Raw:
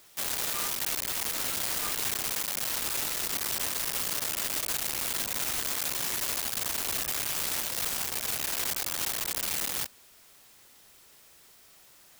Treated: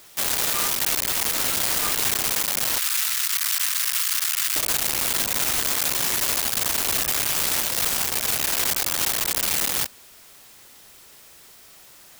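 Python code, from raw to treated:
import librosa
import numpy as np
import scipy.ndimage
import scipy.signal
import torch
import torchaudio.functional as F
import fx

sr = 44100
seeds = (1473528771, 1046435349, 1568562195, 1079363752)

y = fx.highpass(x, sr, hz=1200.0, slope=24, at=(2.78, 4.56))
y = y * librosa.db_to_amplitude(8.0)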